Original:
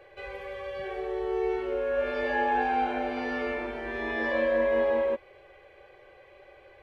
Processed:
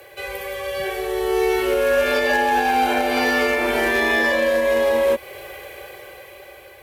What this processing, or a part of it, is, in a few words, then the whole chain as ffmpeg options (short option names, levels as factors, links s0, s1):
FM broadcast chain: -filter_complex "[0:a]asettb=1/sr,asplit=3[s0][s1][s2];[s0]atrim=end=0.904[s3];[s1]atrim=start=0.9:end=2.11,asetpts=PTS-STARTPTS,afade=t=in:d=0.004:c=qsin,afade=t=out:st=1.206:d=0.004:c=qsin,equalizer=f=550:w=0.56:g=-4[s4];[s2]atrim=start=2.106[s5];[s3][s4]acrossfade=d=0.004:c1=hsin:c2=qsin[s6];[s6][s5]acrossfade=d=0.004:c1=qsin:c2=hsin,highpass=f=45:w=0.5412,highpass=f=45:w=1.3066,dynaudnorm=f=570:g=5:m=2.99,acrossover=split=150|380|3300[s7][s8][s9][s10];[s7]acompressor=threshold=0.00631:ratio=4[s11];[s8]acompressor=threshold=0.0251:ratio=4[s12];[s9]acompressor=threshold=0.0891:ratio=4[s13];[s10]acompressor=threshold=0.00708:ratio=4[s14];[s11][s12][s13][s14]amix=inputs=4:normalize=0,aemphasis=mode=production:type=50fm,alimiter=limit=0.119:level=0:latency=1:release=284,asoftclip=type=hard:threshold=0.0944,lowpass=f=15000:w=0.5412,lowpass=f=15000:w=1.3066,aemphasis=mode=production:type=50fm,volume=2.66"